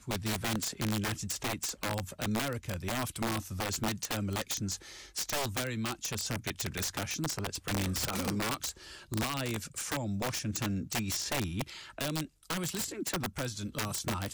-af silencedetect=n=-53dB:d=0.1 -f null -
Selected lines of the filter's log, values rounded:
silence_start: 12.28
silence_end: 12.43 | silence_duration: 0.15